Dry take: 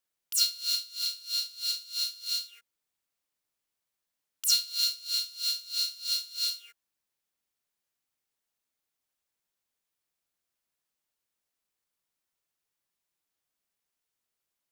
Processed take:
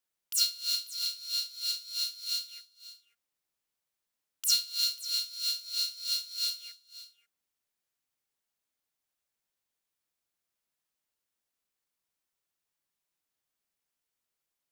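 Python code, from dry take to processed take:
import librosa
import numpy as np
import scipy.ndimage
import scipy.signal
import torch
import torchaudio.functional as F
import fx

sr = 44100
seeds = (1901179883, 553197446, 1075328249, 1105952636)

y = x + 10.0 ** (-16.5 / 20.0) * np.pad(x, (int(541 * sr / 1000.0), 0))[:len(x)]
y = F.gain(torch.from_numpy(y), -1.5).numpy()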